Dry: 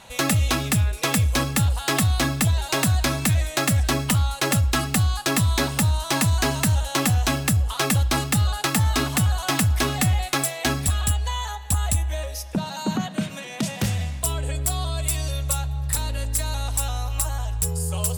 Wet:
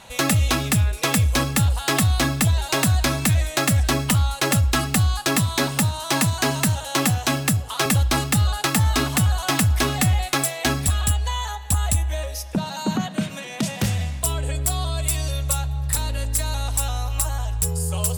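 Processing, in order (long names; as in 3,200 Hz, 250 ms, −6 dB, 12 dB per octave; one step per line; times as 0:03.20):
0:05.36–0:07.86: high-pass filter 100 Hz 24 dB per octave
level +1.5 dB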